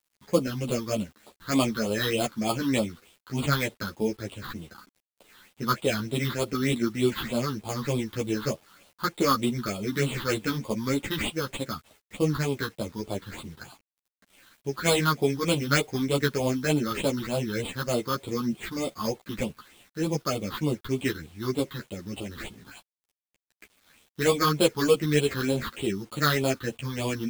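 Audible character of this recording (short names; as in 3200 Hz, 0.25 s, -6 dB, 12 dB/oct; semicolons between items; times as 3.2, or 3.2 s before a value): aliases and images of a low sample rate 5700 Hz, jitter 0%; phasing stages 6, 3.3 Hz, lowest notch 600–1700 Hz; a quantiser's noise floor 10-bit, dither none; a shimmering, thickened sound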